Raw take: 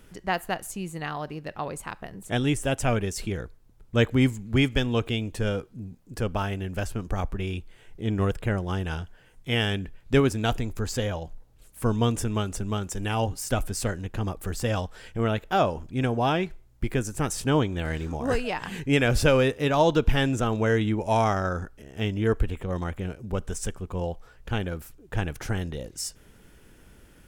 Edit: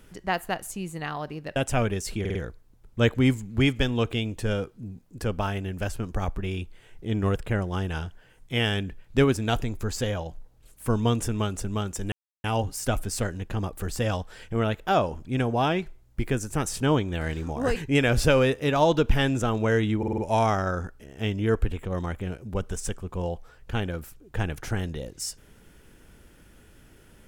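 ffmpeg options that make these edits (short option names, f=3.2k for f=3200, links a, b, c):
-filter_complex "[0:a]asplit=11[a][b][c][d][e][f][g][h][i][j][k];[a]atrim=end=1.562[l];[b]atrim=start=2.668:end=3.362[m];[c]atrim=start=3.308:end=3.362[n];[d]atrim=start=3.308:end=3.362[o];[e]atrim=start=3.308:end=13.08,asetpts=PTS-STARTPTS,afade=t=out:st=9.768:d=0.004:c=hsin,apad=pad_dur=0.32[p];[f]atrim=start=13.08:end=18.402,asetpts=PTS-STARTPTS,afade=t=in:d=0.004:c=hsin[q];[g]atrim=start=18.738:end=21.012[r];[h]atrim=start=20.958:end=21.012[s];[i]atrim=start=20.958:end=21.012[t];[j]atrim=start=20.958:end=21.012[u];[k]atrim=start=20.958[v];[l][m]acrossfade=d=0.004:c1=hsin:c2=hsin[w];[w][n]acrossfade=d=0.004:c1=hsin:c2=hsin[x];[x][o]acrossfade=d=0.004:c1=hsin:c2=hsin[y];[p][q]concat=n=2:v=0:a=1[z];[y][z]acrossfade=d=0.004:c1=hsin:c2=hsin[aa];[aa][r]acrossfade=d=0.004:c1=hsin:c2=hsin[ab];[ab][s]acrossfade=d=0.004:c1=hsin:c2=hsin[ac];[ac][t]acrossfade=d=0.004:c1=hsin:c2=hsin[ad];[ad][u]acrossfade=d=0.004:c1=hsin:c2=hsin[ae];[ae][v]acrossfade=d=0.004:c1=hsin:c2=hsin"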